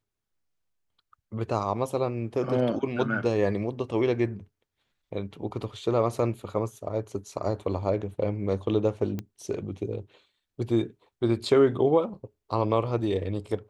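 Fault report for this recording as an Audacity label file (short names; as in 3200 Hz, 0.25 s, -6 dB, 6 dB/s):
9.190000	9.190000	pop -20 dBFS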